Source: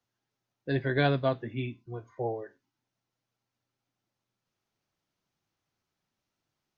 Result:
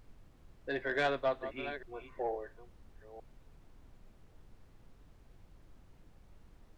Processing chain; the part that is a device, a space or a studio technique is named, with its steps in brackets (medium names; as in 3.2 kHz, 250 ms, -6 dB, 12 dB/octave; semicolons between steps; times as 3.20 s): chunks repeated in reverse 457 ms, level -13 dB; aircraft cabin announcement (band-pass 480–3200 Hz; saturation -23 dBFS, distortion -15 dB; brown noise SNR 14 dB)